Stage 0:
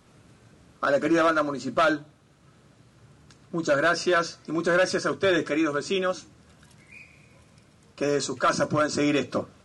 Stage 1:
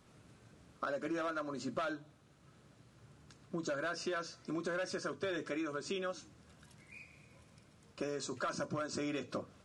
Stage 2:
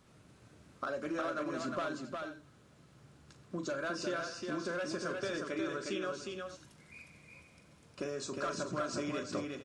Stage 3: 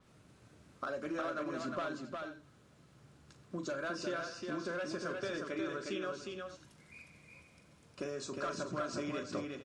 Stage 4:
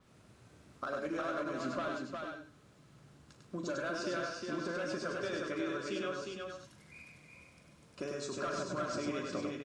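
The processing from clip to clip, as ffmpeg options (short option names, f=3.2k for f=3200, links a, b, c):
-af "acompressor=threshold=-29dB:ratio=6,volume=-6.5dB"
-af "aecho=1:1:40|204|359|444:0.282|0.112|0.631|0.211"
-af "adynamicequalizer=threshold=0.001:dfrequency=5800:dqfactor=0.7:tfrequency=5800:tqfactor=0.7:attack=5:release=100:ratio=0.375:range=2.5:mode=cutabove:tftype=highshelf,volume=-1.5dB"
-af "aecho=1:1:99:0.668"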